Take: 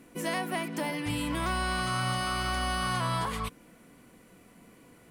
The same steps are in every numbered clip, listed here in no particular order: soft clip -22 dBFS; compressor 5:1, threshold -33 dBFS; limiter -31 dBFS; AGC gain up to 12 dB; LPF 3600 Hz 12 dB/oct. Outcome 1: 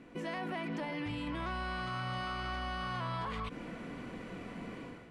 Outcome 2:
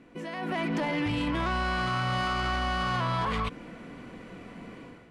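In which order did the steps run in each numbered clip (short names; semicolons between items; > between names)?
soft clip > compressor > AGC > limiter > LPF; LPF > limiter > compressor > AGC > soft clip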